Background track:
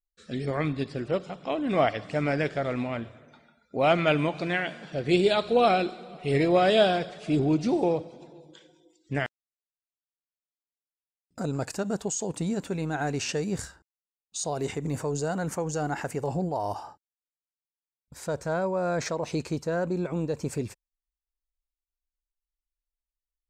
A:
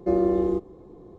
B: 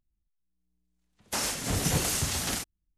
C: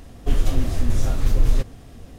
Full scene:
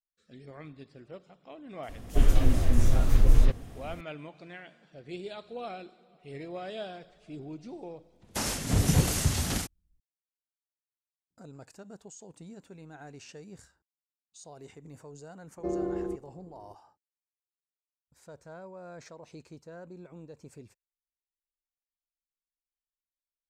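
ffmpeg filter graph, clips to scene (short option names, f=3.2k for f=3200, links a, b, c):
-filter_complex "[0:a]volume=-18dB[a];[3:a]acrossover=split=4700[b][c];[b]adelay=60[d];[d][c]amix=inputs=2:normalize=0[e];[2:a]lowshelf=f=310:g=10[f];[e]atrim=end=2.18,asetpts=PTS-STARTPTS,volume=-2dB,afade=t=in:d=0.004:c=hsin,afade=t=out:st=2.176:d=0.004:c=hsin,adelay=1830[g];[f]atrim=end=2.97,asetpts=PTS-STARTPTS,volume=-2.5dB,afade=t=in:d=0.004:c=hsin,afade=t=out:st=2.966:d=0.004:c=hsin,adelay=7030[h];[1:a]atrim=end=1.18,asetpts=PTS-STARTPTS,volume=-10dB,afade=t=in:d=0.004:c=hsin,afade=t=out:st=1.176:d=0.004:c=hsin,adelay=15570[i];[a][g][h][i]amix=inputs=4:normalize=0"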